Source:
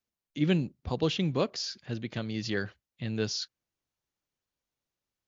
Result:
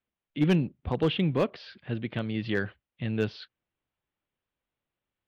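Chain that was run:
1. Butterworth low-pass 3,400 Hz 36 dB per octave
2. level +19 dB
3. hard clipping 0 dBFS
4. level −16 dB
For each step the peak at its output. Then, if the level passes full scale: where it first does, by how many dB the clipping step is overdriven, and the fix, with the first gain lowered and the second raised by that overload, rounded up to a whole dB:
−13.5, +5.5, 0.0, −16.0 dBFS
step 2, 5.5 dB
step 2 +13 dB, step 4 −10 dB

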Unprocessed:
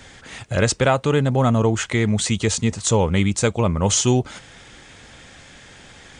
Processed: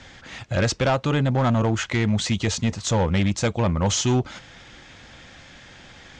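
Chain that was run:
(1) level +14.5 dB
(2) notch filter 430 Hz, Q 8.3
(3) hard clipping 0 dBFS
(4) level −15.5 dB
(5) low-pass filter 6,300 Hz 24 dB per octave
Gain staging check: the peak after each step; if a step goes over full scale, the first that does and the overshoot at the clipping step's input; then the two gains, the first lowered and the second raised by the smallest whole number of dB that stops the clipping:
+10.0, +9.5, 0.0, −15.5, −14.0 dBFS
step 1, 9.5 dB
step 1 +4.5 dB, step 4 −5.5 dB

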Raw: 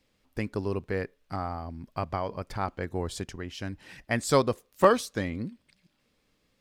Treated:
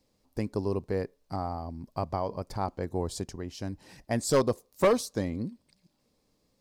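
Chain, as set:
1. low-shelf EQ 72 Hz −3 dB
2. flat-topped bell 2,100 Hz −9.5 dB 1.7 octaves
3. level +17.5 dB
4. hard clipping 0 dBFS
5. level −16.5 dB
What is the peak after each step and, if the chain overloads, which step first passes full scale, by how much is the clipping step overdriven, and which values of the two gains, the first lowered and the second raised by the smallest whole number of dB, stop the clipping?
−6.0, −8.5, +9.0, 0.0, −16.5 dBFS
step 3, 9.0 dB
step 3 +8.5 dB, step 5 −7.5 dB

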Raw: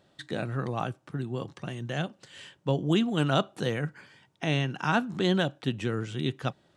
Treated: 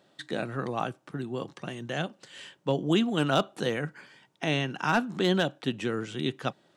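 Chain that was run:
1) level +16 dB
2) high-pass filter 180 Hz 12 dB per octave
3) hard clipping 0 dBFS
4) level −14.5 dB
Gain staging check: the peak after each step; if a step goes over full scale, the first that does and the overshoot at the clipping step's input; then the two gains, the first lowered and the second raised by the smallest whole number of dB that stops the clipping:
+5.5, +5.0, 0.0, −14.5 dBFS
step 1, 5.0 dB
step 1 +11 dB, step 4 −9.5 dB

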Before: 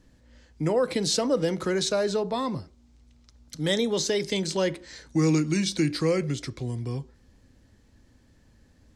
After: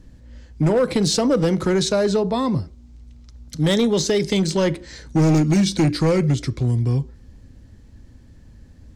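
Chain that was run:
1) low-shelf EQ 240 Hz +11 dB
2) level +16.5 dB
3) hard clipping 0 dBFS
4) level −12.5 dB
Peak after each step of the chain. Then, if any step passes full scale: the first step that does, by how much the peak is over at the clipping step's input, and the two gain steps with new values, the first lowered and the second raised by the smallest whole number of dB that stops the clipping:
−8.0, +8.5, 0.0, −12.5 dBFS
step 2, 8.5 dB
step 2 +7.5 dB, step 4 −3.5 dB

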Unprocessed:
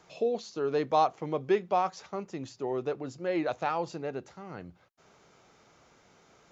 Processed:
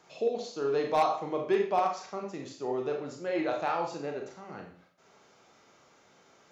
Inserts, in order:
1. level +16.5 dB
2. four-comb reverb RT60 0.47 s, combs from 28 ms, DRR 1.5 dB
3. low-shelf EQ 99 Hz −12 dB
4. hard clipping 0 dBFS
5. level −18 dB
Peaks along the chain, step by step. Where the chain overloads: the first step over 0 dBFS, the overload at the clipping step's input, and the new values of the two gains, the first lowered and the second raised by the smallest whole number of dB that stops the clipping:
+3.5, +7.5, +7.0, 0.0, −18.0 dBFS
step 1, 7.0 dB
step 1 +9.5 dB, step 5 −11 dB

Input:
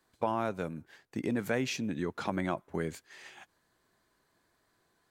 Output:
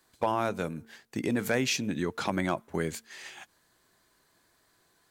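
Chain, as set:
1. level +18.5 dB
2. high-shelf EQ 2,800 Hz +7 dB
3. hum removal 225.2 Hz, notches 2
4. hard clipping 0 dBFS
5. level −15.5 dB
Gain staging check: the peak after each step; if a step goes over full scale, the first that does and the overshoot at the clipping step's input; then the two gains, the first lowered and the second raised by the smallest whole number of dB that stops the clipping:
+3.5, +4.0, +4.0, 0.0, −15.5 dBFS
step 1, 4.0 dB
step 1 +14.5 dB, step 5 −11.5 dB

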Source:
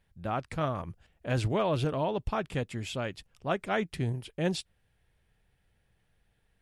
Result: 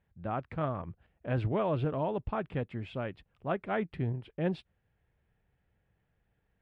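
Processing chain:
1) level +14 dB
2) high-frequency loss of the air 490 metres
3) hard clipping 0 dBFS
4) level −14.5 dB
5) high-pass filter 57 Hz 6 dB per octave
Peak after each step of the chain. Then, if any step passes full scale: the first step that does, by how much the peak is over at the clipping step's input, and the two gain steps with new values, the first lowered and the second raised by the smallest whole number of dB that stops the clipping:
−1.5, −3.5, −3.5, −18.0, −18.0 dBFS
no step passes full scale

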